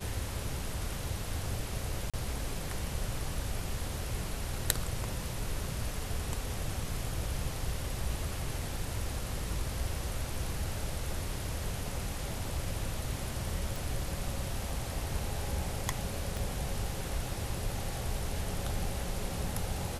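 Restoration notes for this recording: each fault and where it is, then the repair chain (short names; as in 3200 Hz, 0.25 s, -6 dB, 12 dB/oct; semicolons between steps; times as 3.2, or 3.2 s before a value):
2.1–2.14 gap 36 ms
13.76 pop
16.37 pop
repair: de-click; interpolate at 2.1, 36 ms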